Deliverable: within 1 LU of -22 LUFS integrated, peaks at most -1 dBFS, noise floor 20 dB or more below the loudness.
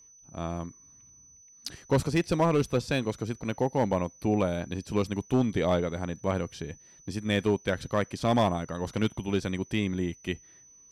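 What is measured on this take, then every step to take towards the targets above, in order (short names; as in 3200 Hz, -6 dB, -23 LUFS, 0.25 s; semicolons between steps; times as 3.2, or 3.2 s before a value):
clipped 0.5%; flat tops at -17.0 dBFS; steady tone 6000 Hz; tone level -53 dBFS; loudness -29.0 LUFS; peak -17.0 dBFS; loudness target -22.0 LUFS
-> clip repair -17 dBFS; notch 6000 Hz, Q 30; gain +7 dB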